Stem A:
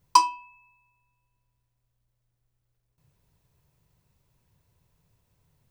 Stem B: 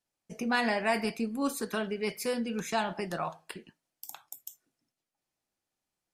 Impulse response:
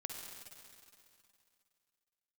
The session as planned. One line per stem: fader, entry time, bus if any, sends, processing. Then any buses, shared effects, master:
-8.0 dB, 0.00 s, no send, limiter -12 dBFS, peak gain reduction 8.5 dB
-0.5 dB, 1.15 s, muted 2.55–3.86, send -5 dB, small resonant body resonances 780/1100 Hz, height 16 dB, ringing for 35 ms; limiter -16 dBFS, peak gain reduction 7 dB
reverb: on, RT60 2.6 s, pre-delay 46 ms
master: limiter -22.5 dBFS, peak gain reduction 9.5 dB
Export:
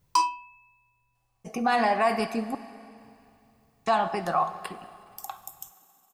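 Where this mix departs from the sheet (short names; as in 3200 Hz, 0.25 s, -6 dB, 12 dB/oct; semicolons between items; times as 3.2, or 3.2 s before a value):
stem A -8.0 dB -> +1.0 dB; master: missing limiter -22.5 dBFS, peak gain reduction 9.5 dB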